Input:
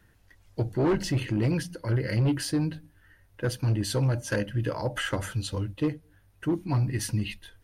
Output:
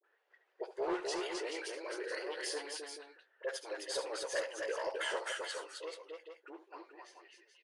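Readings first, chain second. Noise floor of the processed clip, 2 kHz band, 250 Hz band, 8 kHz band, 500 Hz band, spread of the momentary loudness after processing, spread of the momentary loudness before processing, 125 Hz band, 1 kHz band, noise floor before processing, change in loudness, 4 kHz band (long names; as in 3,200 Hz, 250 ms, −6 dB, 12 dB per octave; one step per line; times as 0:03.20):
−76 dBFS, −5.0 dB, −19.5 dB, −7.0 dB, −6.5 dB, 16 LU, 7 LU, below −40 dB, −5.0 dB, −61 dBFS, −11.0 dB, −5.5 dB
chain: fade-out on the ending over 2.48 s
Butterworth high-pass 380 Hz 72 dB per octave
gain into a clipping stage and back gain 22 dB
low-pass that shuts in the quiet parts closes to 2,400 Hz, open at −31.5 dBFS
all-pass dispersion highs, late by 44 ms, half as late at 850 Hz
tape wow and flutter 130 cents
on a send: multi-tap delay 70/83/262/430 ms −12/−19/−4/−8 dB
on the sum: downsampling to 22,050 Hz
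level −6.5 dB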